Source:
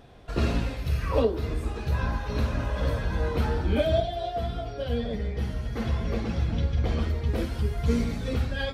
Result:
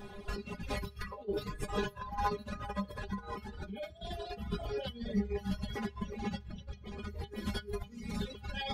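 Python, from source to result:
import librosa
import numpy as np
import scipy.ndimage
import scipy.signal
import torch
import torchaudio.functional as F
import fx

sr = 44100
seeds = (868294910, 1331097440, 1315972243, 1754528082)

y = fx.over_compress(x, sr, threshold_db=-34.0, ratio=-1.0)
y = fx.peak_eq(y, sr, hz=78.0, db=5.5, octaves=0.84)
y = fx.notch(y, sr, hz=630.0, q=12.0)
y = fx.stiff_resonator(y, sr, f0_hz=200.0, decay_s=0.2, stiffness=0.002)
y = fx.dereverb_blind(y, sr, rt60_s=1.5)
y = fx.comb(y, sr, ms=6.7, depth=0.85, at=(1.33, 1.98))
y = y * librosa.db_to_amplitude(10.5)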